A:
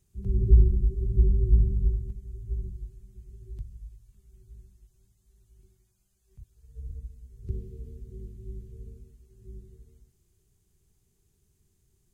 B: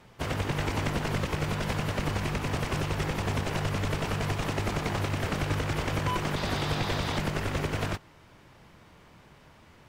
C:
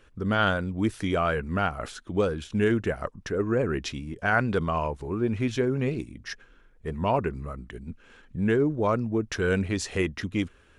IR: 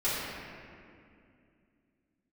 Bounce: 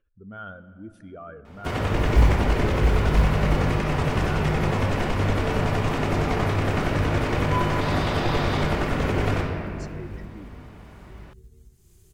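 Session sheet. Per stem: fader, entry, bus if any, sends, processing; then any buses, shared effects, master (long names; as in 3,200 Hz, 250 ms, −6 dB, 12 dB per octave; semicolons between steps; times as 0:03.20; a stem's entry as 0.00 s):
−1.0 dB, 1.65 s, no send, upward compression, threshold −39 dBFS; floating-point word with a short mantissa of 4 bits
+1.0 dB, 1.45 s, send −6.5 dB, high-shelf EQ 2,900 Hz −7 dB
−16.0 dB, 0.00 s, send −21 dB, expanding power law on the bin magnitudes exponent 1.7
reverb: on, RT60 2.4 s, pre-delay 3 ms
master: no processing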